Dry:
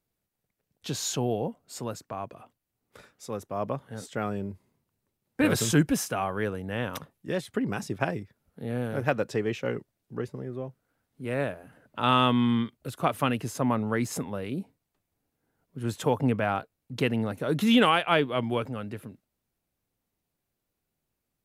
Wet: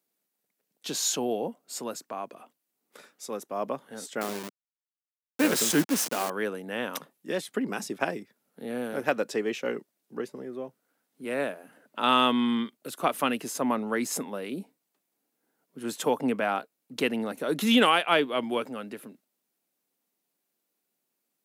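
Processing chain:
0:04.21–0:06.30: hold until the input has moved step −29 dBFS
high-pass filter 210 Hz 24 dB per octave
high-shelf EQ 4,100 Hz +6 dB

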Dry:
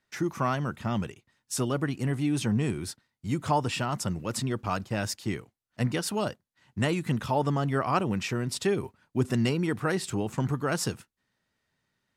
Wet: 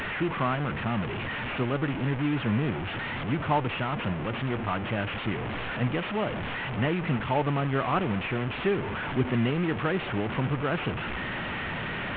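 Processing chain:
linear delta modulator 16 kbit/s, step −26 dBFS

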